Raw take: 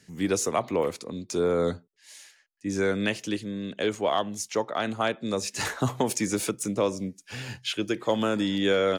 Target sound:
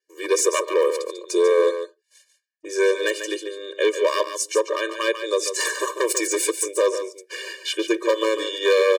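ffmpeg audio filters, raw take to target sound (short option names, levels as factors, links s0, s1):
-af "agate=range=0.0355:threshold=0.00562:ratio=16:detection=peak,adynamicequalizer=threshold=0.00282:dfrequency=8300:dqfactor=3.6:tfrequency=8300:tqfactor=3.6:attack=5:release=100:ratio=0.375:range=3.5:mode=boostabove:tftype=bell,aeval=exprs='0.126*(abs(mod(val(0)/0.126+3,4)-2)-1)':c=same,aecho=1:1:144:0.355,afftfilt=real='re*eq(mod(floor(b*sr/1024/310),2),1)':imag='im*eq(mod(floor(b*sr/1024/310),2),1)':win_size=1024:overlap=0.75,volume=2.66"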